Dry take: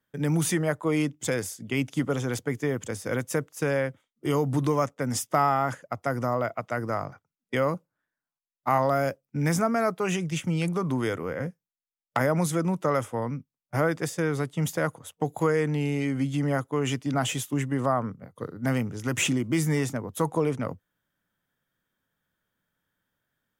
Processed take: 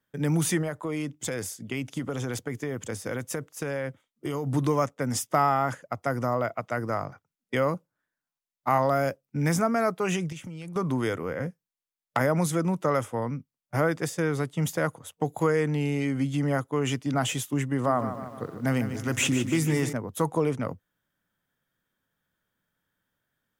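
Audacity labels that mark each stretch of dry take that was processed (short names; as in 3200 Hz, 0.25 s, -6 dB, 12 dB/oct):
0.620000	4.470000	compressor, threshold -26 dBFS
10.320000	10.760000	compressor 16:1, threshold -35 dBFS
17.680000	19.930000	lo-fi delay 0.15 s, feedback 55%, word length 9-bit, level -10 dB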